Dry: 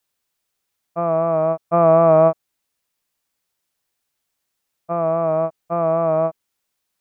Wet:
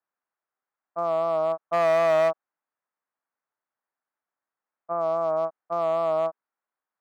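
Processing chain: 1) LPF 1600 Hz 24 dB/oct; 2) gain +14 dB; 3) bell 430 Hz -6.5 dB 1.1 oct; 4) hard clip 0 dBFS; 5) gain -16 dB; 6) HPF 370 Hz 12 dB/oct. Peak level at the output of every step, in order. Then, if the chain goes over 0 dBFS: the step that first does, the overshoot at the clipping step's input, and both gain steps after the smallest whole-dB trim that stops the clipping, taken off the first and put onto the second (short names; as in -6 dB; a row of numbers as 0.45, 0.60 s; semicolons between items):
-3.0, +11.0, +8.0, 0.0, -16.0, -12.0 dBFS; step 2, 8.0 dB; step 2 +6 dB, step 5 -8 dB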